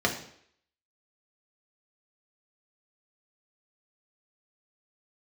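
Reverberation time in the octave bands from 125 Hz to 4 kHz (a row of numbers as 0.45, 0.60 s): 0.55, 0.60, 0.65, 0.65, 0.65, 0.65 s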